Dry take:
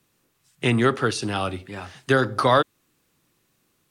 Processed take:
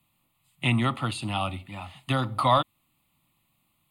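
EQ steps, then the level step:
phaser with its sweep stopped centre 1,600 Hz, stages 6
0.0 dB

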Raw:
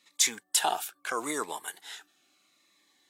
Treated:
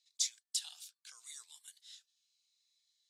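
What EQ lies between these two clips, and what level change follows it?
four-pole ladder band-pass 5,500 Hz, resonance 40%
+1.0 dB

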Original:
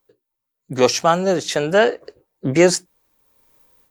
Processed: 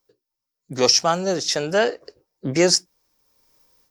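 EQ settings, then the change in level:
parametric band 5,300 Hz +14 dB 0.48 octaves
−4.5 dB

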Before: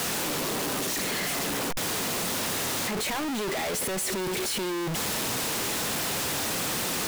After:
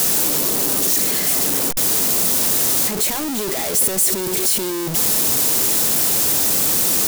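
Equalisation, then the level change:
bass and treble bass −7 dB, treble +10 dB
low-shelf EQ 450 Hz +12 dB
high-shelf EQ 10,000 Hz +9 dB
0.0 dB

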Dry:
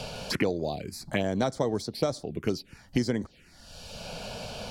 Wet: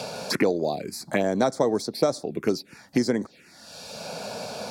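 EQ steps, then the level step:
high-pass filter 210 Hz 12 dB per octave
notch filter 3,000 Hz, Q 6.2
dynamic equaliser 2,900 Hz, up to −5 dB, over −50 dBFS, Q 1.3
+6.0 dB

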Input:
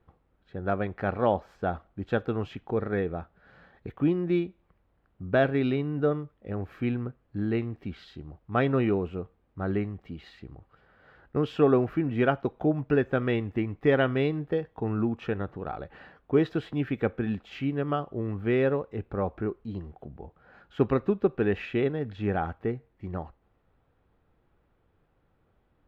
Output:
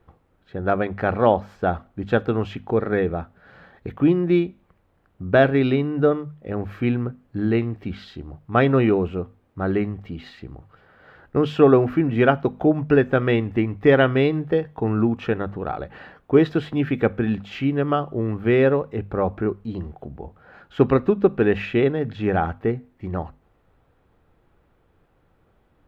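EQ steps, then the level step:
mains-hum notches 50/100/150/200/250 Hz
+7.5 dB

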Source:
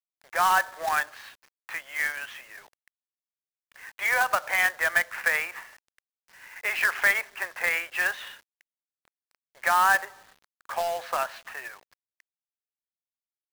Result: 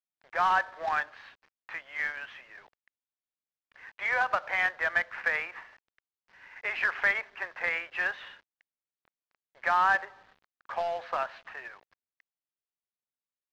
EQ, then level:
high-frequency loss of the air 220 metres
−2.0 dB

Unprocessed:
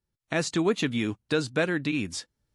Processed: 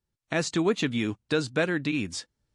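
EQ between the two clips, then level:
low-pass filter 9,800 Hz 24 dB per octave
0.0 dB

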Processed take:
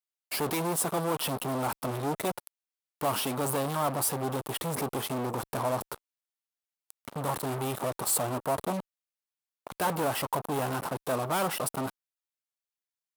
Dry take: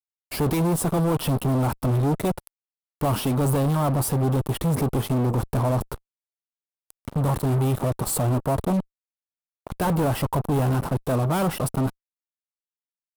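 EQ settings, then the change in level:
high-pass filter 750 Hz 6 dB per octave
0.0 dB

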